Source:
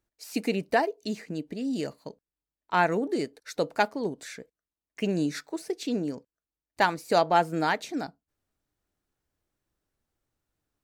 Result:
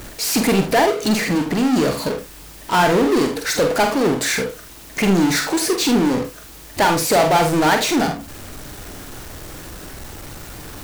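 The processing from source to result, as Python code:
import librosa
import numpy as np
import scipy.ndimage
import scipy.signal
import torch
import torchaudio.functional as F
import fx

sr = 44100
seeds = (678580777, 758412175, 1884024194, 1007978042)

y = fx.power_curve(x, sr, exponent=0.35)
y = fx.room_early_taps(y, sr, ms=(46, 78), db=(-6.5, -12.5))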